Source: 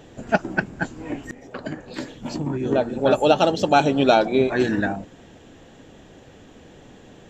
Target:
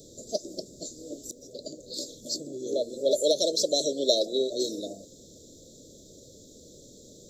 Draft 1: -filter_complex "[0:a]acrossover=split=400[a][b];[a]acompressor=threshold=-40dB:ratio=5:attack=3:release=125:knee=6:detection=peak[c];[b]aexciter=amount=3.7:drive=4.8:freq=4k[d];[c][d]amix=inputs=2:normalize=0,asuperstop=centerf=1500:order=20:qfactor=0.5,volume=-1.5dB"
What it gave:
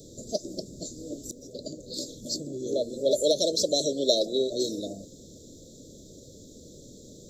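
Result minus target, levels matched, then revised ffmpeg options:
compressor: peak gain reduction -9 dB
-filter_complex "[0:a]acrossover=split=400[a][b];[a]acompressor=threshold=-51.5dB:ratio=5:attack=3:release=125:knee=6:detection=peak[c];[b]aexciter=amount=3.7:drive=4.8:freq=4k[d];[c][d]amix=inputs=2:normalize=0,asuperstop=centerf=1500:order=20:qfactor=0.5,volume=-1.5dB"

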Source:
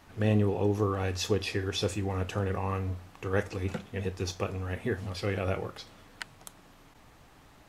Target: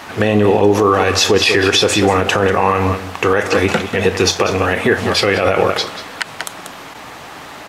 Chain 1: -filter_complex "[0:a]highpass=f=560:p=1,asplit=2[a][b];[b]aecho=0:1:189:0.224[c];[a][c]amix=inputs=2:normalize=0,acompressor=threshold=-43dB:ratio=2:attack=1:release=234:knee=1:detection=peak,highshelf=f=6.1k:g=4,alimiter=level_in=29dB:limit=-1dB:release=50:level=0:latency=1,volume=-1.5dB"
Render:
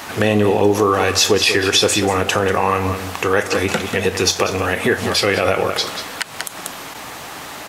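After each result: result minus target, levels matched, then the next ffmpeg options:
compressor: peak gain reduction +5.5 dB; 8000 Hz band +4.0 dB
-filter_complex "[0:a]highpass=f=560:p=1,asplit=2[a][b];[b]aecho=0:1:189:0.224[c];[a][c]amix=inputs=2:normalize=0,acompressor=threshold=-32dB:ratio=2:attack=1:release=234:knee=1:detection=peak,highshelf=f=6.1k:g=4,alimiter=level_in=29dB:limit=-1dB:release=50:level=0:latency=1,volume=-1.5dB"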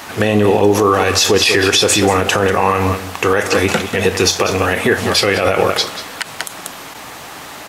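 8000 Hz band +4.0 dB
-filter_complex "[0:a]highpass=f=560:p=1,asplit=2[a][b];[b]aecho=0:1:189:0.224[c];[a][c]amix=inputs=2:normalize=0,acompressor=threshold=-32dB:ratio=2:attack=1:release=234:knee=1:detection=peak,highshelf=f=6.1k:g=-7,alimiter=level_in=29dB:limit=-1dB:release=50:level=0:latency=1,volume=-1.5dB"

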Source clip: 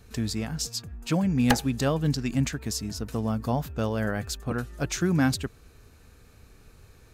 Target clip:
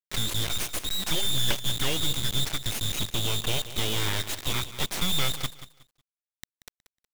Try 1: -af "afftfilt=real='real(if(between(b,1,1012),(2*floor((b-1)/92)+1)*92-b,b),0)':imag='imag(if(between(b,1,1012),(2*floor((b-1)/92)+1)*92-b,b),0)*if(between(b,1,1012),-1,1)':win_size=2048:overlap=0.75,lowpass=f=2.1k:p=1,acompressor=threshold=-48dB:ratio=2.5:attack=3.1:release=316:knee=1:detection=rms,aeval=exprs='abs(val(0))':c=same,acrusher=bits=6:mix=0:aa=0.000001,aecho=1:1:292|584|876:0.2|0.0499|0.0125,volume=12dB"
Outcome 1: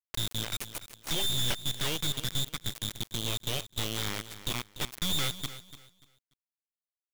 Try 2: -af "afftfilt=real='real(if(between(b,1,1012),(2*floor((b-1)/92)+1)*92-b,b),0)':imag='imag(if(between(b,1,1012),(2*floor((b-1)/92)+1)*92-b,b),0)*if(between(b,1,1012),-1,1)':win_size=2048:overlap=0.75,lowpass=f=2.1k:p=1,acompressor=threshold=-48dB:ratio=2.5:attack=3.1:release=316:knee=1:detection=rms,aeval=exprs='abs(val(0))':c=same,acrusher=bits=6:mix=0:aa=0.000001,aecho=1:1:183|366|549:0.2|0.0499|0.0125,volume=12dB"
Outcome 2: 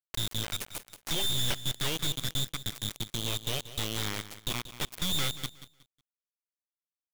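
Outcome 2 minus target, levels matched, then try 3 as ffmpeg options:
compressor: peak gain reduction +6.5 dB
-af "afftfilt=real='real(if(between(b,1,1012),(2*floor((b-1)/92)+1)*92-b,b),0)':imag='imag(if(between(b,1,1012),(2*floor((b-1)/92)+1)*92-b,b),0)*if(between(b,1,1012),-1,1)':win_size=2048:overlap=0.75,lowpass=f=2.1k:p=1,acompressor=threshold=-37dB:ratio=2.5:attack=3.1:release=316:knee=1:detection=rms,aeval=exprs='abs(val(0))':c=same,acrusher=bits=6:mix=0:aa=0.000001,aecho=1:1:183|366|549:0.2|0.0499|0.0125,volume=12dB"

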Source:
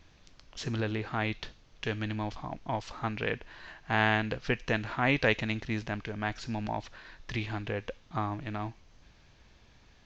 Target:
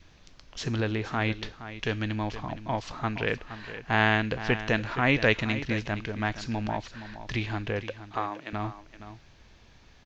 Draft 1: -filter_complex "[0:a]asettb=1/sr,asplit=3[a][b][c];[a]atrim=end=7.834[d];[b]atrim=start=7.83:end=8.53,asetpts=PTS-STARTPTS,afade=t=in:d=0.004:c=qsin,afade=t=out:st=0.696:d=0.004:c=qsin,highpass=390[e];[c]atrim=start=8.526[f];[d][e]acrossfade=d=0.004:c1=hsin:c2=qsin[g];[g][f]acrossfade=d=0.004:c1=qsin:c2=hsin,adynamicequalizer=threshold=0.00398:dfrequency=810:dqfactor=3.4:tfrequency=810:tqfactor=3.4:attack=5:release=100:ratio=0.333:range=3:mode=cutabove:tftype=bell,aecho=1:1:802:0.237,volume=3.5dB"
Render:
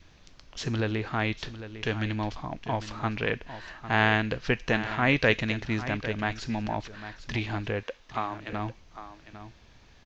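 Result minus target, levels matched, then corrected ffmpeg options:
echo 0.333 s late
-filter_complex "[0:a]asettb=1/sr,asplit=3[a][b][c];[a]atrim=end=7.834[d];[b]atrim=start=7.83:end=8.53,asetpts=PTS-STARTPTS,afade=t=in:d=0.004:c=qsin,afade=t=out:st=0.696:d=0.004:c=qsin,highpass=390[e];[c]atrim=start=8.526[f];[d][e]acrossfade=d=0.004:c1=hsin:c2=qsin[g];[g][f]acrossfade=d=0.004:c1=qsin:c2=hsin,adynamicequalizer=threshold=0.00398:dfrequency=810:dqfactor=3.4:tfrequency=810:tqfactor=3.4:attack=5:release=100:ratio=0.333:range=3:mode=cutabove:tftype=bell,aecho=1:1:469:0.237,volume=3.5dB"

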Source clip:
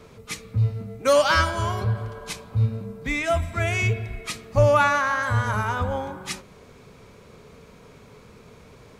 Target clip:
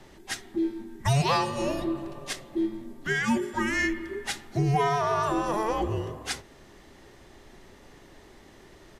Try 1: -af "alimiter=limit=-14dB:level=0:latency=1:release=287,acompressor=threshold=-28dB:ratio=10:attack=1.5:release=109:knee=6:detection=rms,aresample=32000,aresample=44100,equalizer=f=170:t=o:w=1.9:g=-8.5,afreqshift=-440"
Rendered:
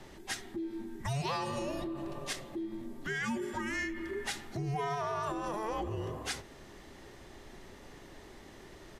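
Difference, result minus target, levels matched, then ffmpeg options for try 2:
compressor: peak gain reduction +12 dB
-af "alimiter=limit=-14dB:level=0:latency=1:release=287,aresample=32000,aresample=44100,equalizer=f=170:t=o:w=1.9:g=-8.5,afreqshift=-440"

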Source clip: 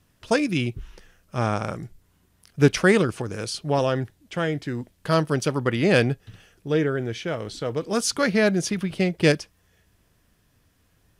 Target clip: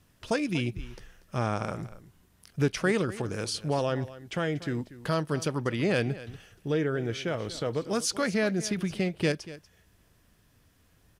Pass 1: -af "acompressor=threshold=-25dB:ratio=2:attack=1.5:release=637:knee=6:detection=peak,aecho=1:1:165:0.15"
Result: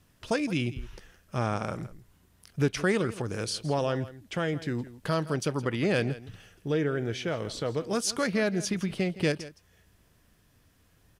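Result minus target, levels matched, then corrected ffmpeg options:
echo 73 ms early
-af "acompressor=threshold=-25dB:ratio=2:attack=1.5:release=637:knee=6:detection=peak,aecho=1:1:238:0.15"

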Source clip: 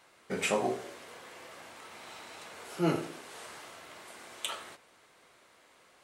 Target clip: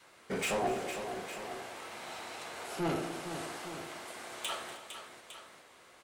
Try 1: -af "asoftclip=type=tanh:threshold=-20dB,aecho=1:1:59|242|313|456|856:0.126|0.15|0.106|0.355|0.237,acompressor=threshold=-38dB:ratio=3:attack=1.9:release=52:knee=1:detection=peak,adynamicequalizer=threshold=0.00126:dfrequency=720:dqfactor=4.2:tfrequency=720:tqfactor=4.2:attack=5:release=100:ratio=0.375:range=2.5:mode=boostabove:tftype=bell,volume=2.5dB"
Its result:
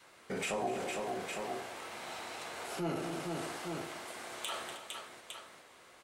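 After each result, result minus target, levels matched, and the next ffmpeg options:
compressor: peak gain reduction +10.5 dB; soft clip: distortion -12 dB
-af "asoftclip=type=tanh:threshold=-20dB,aecho=1:1:59|242|313|456|856:0.126|0.15|0.106|0.355|0.237,adynamicequalizer=threshold=0.00126:dfrequency=720:dqfactor=4.2:tfrequency=720:tqfactor=4.2:attack=5:release=100:ratio=0.375:range=2.5:mode=boostabove:tftype=bell,volume=2.5dB"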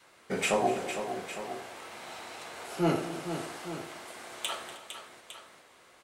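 soft clip: distortion -12 dB
-af "asoftclip=type=tanh:threshold=-32dB,aecho=1:1:59|242|313|456|856:0.126|0.15|0.106|0.355|0.237,adynamicequalizer=threshold=0.00126:dfrequency=720:dqfactor=4.2:tfrequency=720:tqfactor=4.2:attack=5:release=100:ratio=0.375:range=2.5:mode=boostabove:tftype=bell,volume=2.5dB"

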